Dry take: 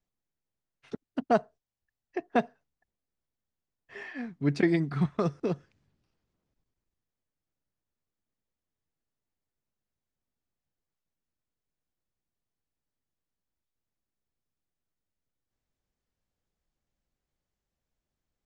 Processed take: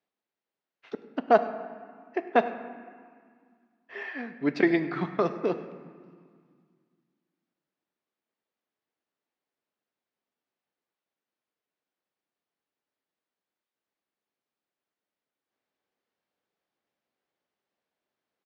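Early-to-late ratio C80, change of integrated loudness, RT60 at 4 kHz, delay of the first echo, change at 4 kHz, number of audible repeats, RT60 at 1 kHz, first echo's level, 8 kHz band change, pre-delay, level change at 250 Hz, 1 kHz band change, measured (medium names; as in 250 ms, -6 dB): 12.0 dB, +2.0 dB, 1.3 s, 101 ms, +2.0 dB, 1, 2.0 s, -20.0 dB, no reading, 3 ms, +0.5 dB, +5.5 dB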